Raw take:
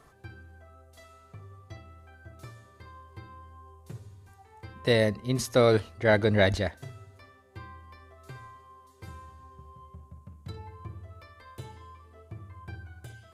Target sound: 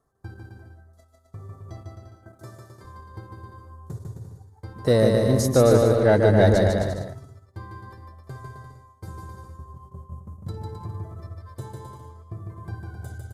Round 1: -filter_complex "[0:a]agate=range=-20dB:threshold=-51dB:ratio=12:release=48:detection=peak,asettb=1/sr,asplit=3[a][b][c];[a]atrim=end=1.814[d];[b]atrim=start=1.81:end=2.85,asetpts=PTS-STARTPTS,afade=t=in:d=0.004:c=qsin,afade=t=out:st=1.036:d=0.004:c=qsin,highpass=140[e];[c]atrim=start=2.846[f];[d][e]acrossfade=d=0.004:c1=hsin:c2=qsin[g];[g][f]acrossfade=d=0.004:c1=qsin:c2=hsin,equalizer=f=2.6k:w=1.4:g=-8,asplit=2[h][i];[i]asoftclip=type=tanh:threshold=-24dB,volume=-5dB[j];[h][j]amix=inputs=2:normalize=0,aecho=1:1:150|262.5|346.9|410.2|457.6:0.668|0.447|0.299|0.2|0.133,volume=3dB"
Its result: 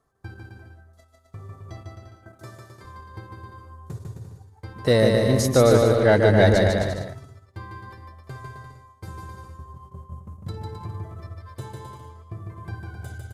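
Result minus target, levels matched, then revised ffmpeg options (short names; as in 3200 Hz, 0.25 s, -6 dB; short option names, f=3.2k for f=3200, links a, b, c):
2000 Hz band +4.0 dB
-filter_complex "[0:a]agate=range=-20dB:threshold=-51dB:ratio=12:release=48:detection=peak,asettb=1/sr,asplit=3[a][b][c];[a]atrim=end=1.814[d];[b]atrim=start=1.81:end=2.85,asetpts=PTS-STARTPTS,afade=t=in:d=0.004:c=qsin,afade=t=out:st=1.036:d=0.004:c=qsin,highpass=140[e];[c]atrim=start=2.846[f];[d][e]acrossfade=d=0.004:c1=hsin:c2=qsin[g];[g][f]acrossfade=d=0.004:c1=qsin:c2=hsin,equalizer=f=2.6k:w=1.4:g=-19,asplit=2[h][i];[i]asoftclip=type=tanh:threshold=-24dB,volume=-5dB[j];[h][j]amix=inputs=2:normalize=0,aecho=1:1:150|262.5|346.9|410.2|457.6:0.668|0.447|0.299|0.2|0.133,volume=3dB"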